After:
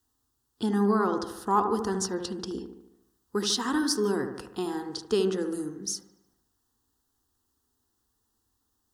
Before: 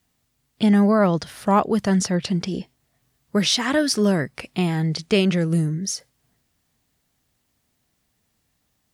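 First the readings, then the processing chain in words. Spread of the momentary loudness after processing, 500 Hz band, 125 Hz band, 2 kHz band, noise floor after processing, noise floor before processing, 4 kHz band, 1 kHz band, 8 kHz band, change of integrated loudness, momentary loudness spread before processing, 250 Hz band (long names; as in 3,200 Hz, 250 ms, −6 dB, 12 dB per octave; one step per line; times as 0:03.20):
10 LU, −5.5 dB, −15.5 dB, −10.0 dB, −77 dBFS, −71 dBFS, −7.5 dB, −4.0 dB, −5.0 dB, −7.5 dB, 9 LU, −9.0 dB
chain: phaser with its sweep stopped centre 610 Hz, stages 6
on a send: delay with a low-pass on its return 74 ms, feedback 54%, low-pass 1,600 Hz, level −6.5 dB
on the sum: level −3.5 dB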